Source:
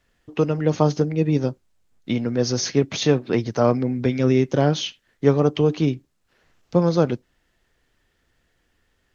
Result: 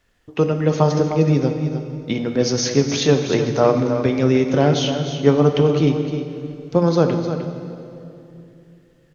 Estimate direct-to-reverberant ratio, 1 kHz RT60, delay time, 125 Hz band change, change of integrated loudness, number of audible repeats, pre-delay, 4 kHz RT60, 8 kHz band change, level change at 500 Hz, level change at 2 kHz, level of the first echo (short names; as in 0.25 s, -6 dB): 5.0 dB, 2.6 s, 0.305 s, +3.0 dB, +3.0 dB, 1, 16 ms, 2.3 s, n/a, +3.5 dB, +3.5 dB, -9.5 dB